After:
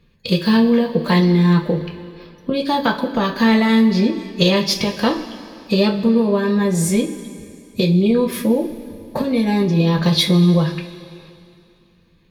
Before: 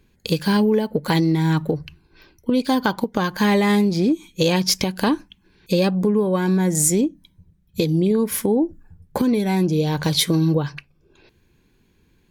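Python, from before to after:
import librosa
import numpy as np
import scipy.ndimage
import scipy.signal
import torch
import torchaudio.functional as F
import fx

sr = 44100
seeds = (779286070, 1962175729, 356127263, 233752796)

y = fx.pitch_keep_formants(x, sr, semitones=1.5)
y = fx.high_shelf_res(y, sr, hz=5500.0, db=-7.0, q=1.5)
y = fx.rev_double_slope(y, sr, seeds[0], early_s=0.23, late_s=2.6, knee_db=-18, drr_db=1.0)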